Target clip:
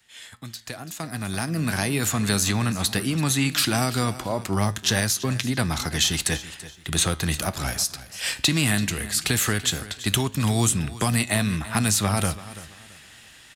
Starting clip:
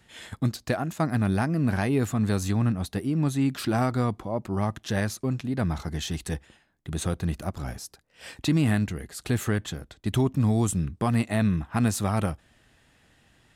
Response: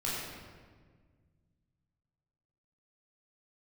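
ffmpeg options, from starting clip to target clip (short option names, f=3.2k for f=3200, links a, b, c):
-filter_complex "[0:a]acrossover=split=190|700|4300[a][b][c][d];[a]acompressor=threshold=-27dB:ratio=4[e];[b]acompressor=threshold=-31dB:ratio=4[f];[c]acompressor=threshold=-40dB:ratio=4[g];[d]acompressor=threshold=-42dB:ratio=4[h];[e][f][g][h]amix=inputs=4:normalize=0,asplit=2[i][j];[j]aecho=0:1:335|670|1005:0.158|0.046|0.0133[k];[i][k]amix=inputs=2:normalize=0,flanger=delay=8.1:depth=7.1:regen=85:speed=0.18:shape=sinusoidal,dynaudnorm=f=550:g=5:m=16dB,tiltshelf=f=1.2k:g=-8.5"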